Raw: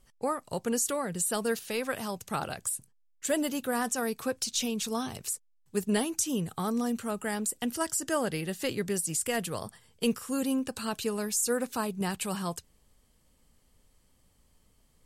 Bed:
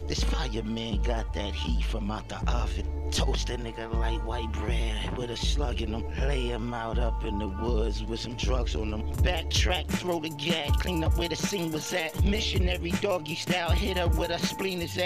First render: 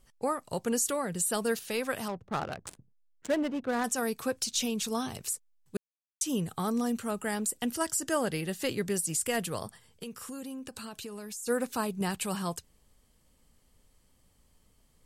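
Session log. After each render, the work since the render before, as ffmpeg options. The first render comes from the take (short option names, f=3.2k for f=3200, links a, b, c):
-filter_complex "[0:a]asettb=1/sr,asplit=3[a][b][c];[a]atrim=end=2.084[d];[b]atrim=start=2.08:end=3.84,asetpts=PTS-STARTPTS,afade=t=in:d=0.004:c=qsin,afade=t=out:st=1.756:d=0.004:c=qsin,adynamicsmooth=sensitivity=6:basefreq=500[e];[c]atrim=start=3.836[f];[d][e]acrossfade=d=0.004:c1=hsin:c2=qsin[g];[g][f]acrossfade=d=0.004:c1=qsin:c2=hsin,asplit=3[h][i][j];[h]afade=t=out:st=9.66:d=0.02[k];[i]acompressor=threshold=-38dB:ratio=6:attack=3.2:release=140:knee=1:detection=peak,afade=t=in:st=9.66:d=0.02,afade=t=out:st=11.46:d=0.02[l];[j]afade=t=in:st=11.46:d=0.02[m];[k][l][m]amix=inputs=3:normalize=0,asplit=3[n][o][p];[n]atrim=end=5.77,asetpts=PTS-STARTPTS,afade=t=out:st=5.766:d=0.004:c=hsin[q];[o]atrim=start=5.77:end=6.21,asetpts=PTS-STARTPTS,volume=0[r];[p]atrim=start=6.21,asetpts=PTS-STARTPTS,afade=t=in:d=0.004:c=hsin[s];[q][r][s]concat=n=3:v=0:a=1"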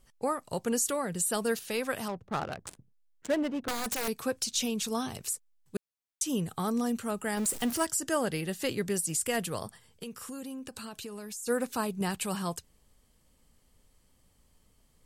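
-filter_complex "[0:a]asettb=1/sr,asplit=3[a][b][c];[a]atrim=end=3.564[d];[b]atrim=start=3.56:end=4.08,asetpts=PTS-STARTPTS,afade=t=in:d=0.004:c=qsin,afade=t=out:st=0.516:d=0.004:c=qsin,aeval=exprs='(mod(17.8*val(0)+1,2)-1)/17.8':c=same[e];[c]atrim=start=4.076[f];[d][e]acrossfade=d=0.004:c1=hsin:c2=qsin[g];[g][f]acrossfade=d=0.004:c1=qsin:c2=hsin,asettb=1/sr,asplit=3[h][i][j];[h]atrim=end=7.374[k];[i]atrim=start=7.37:end=7.85,asetpts=PTS-STARTPTS,afade=t=in:d=0.004:c=qsin,afade=t=out:st=0.476:d=0.004:c=qsin,aeval=exprs='val(0)+0.5*0.0188*sgn(val(0))':c=same[l];[j]atrim=start=7.846[m];[k][l]acrossfade=d=0.004:c1=hsin:c2=qsin[n];[n][m]acrossfade=d=0.004:c1=qsin:c2=hsin"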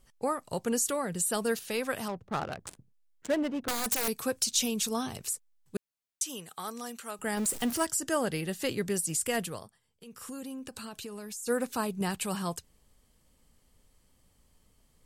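-filter_complex "[0:a]asettb=1/sr,asplit=3[a][b][c];[a]atrim=end=3.684[d];[b]atrim=start=3.68:end=4.89,asetpts=PTS-STARTPTS,afade=t=in:d=0.004:c=qsin,afade=t=out:st=1.206:d=0.004:c=qsin,highshelf=f=5.8k:g=6.5[e];[c]atrim=start=4.886[f];[d][e]acrossfade=d=0.004:c1=hsin:c2=qsin[g];[g][f]acrossfade=d=0.004:c1=qsin:c2=hsin,asettb=1/sr,asplit=3[h][i][j];[h]atrim=end=6.224[k];[i]atrim=start=6.22:end=7.19,asetpts=PTS-STARTPTS,afade=t=in:d=0.004:c=qsin,afade=t=out:st=0.966:d=0.004:c=qsin,highpass=f=1.2k:p=1[l];[j]atrim=start=7.186[m];[k][l]acrossfade=d=0.004:c1=hsin:c2=qsin[n];[n][m]acrossfade=d=0.004:c1=qsin:c2=hsin,asplit=3[o][p][q];[o]atrim=end=9.69,asetpts=PTS-STARTPTS,afade=t=out:st=9.4:d=0.29:silence=0.188365[r];[p]atrim=start=9.69:end=9.99,asetpts=PTS-STARTPTS,volume=-14.5dB[s];[q]atrim=start=9.99,asetpts=PTS-STARTPTS,afade=t=in:d=0.29:silence=0.188365[t];[r][s][t]concat=n=3:v=0:a=1"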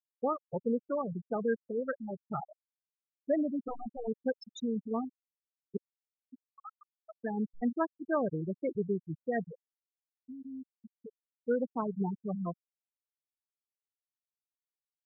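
-af "lowpass=f=2.6k:p=1,afftfilt=real='re*gte(hypot(re,im),0.1)':imag='im*gte(hypot(re,im),0.1)':win_size=1024:overlap=0.75"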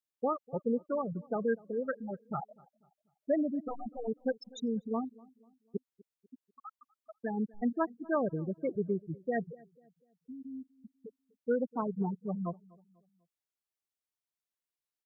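-filter_complex "[0:a]asplit=2[a][b];[b]adelay=246,lowpass=f=1.2k:p=1,volume=-23dB,asplit=2[c][d];[d]adelay=246,lowpass=f=1.2k:p=1,volume=0.43,asplit=2[e][f];[f]adelay=246,lowpass=f=1.2k:p=1,volume=0.43[g];[a][c][e][g]amix=inputs=4:normalize=0"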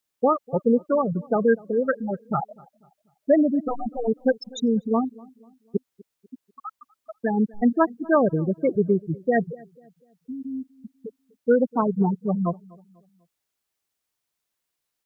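-af "volume=11.5dB"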